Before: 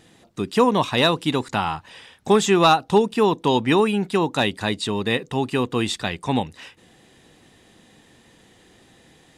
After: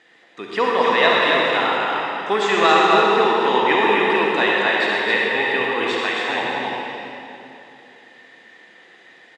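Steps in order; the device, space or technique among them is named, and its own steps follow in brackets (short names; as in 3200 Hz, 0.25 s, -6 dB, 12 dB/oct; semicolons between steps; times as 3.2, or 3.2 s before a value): station announcement (BPF 430–4200 Hz; bell 1900 Hz +10 dB 0.55 oct; loudspeakers at several distances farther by 43 m -11 dB, 93 m -4 dB; reverb RT60 2.9 s, pre-delay 43 ms, DRR -3 dB); 6.01–6.42 low shelf 140 Hz -10 dB; gain -2 dB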